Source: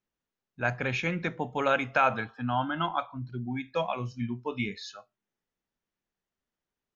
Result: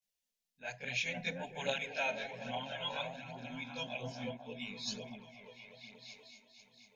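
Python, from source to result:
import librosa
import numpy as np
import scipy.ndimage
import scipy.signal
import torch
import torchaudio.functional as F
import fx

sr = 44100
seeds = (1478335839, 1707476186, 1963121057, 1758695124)

p1 = fx.tilt_shelf(x, sr, db=-8.5, hz=1500.0)
p2 = fx.fixed_phaser(p1, sr, hz=330.0, stages=6)
p3 = p2 + fx.echo_opening(p2, sr, ms=243, hz=400, octaves=1, feedback_pct=70, wet_db=-3, dry=0)
p4 = fx.tremolo_random(p3, sr, seeds[0], hz=3.5, depth_pct=55)
p5 = fx.chorus_voices(p4, sr, voices=2, hz=0.59, base_ms=21, depth_ms=2.3, mix_pct=70)
y = F.gain(torch.from_numpy(p5), 1.5).numpy()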